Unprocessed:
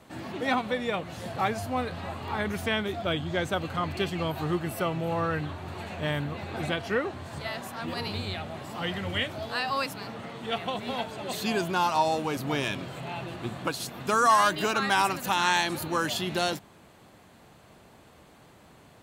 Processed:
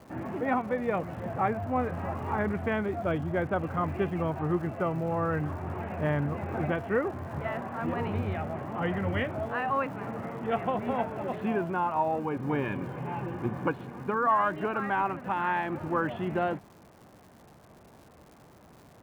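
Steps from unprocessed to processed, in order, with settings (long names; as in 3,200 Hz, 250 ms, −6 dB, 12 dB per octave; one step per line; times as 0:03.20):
Bessel low-pass filter 1,400 Hz, order 8
speech leveller within 3 dB 0.5 s
surface crackle 260 per second −48 dBFS
0:12.19–0:14.27: notch comb filter 660 Hz
level +1 dB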